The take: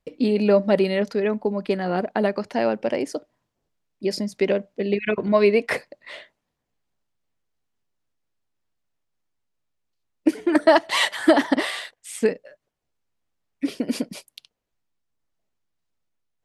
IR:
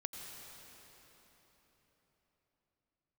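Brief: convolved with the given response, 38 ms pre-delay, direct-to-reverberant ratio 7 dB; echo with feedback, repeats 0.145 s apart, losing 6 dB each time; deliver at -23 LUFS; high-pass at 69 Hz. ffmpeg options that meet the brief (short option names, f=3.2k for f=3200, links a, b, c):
-filter_complex "[0:a]highpass=69,aecho=1:1:145|290|435|580|725|870:0.501|0.251|0.125|0.0626|0.0313|0.0157,asplit=2[a][b];[1:a]atrim=start_sample=2205,adelay=38[c];[b][c]afir=irnorm=-1:irlink=0,volume=-6dB[d];[a][d]amix=inputs=2:normalize=0,volume=-2dB"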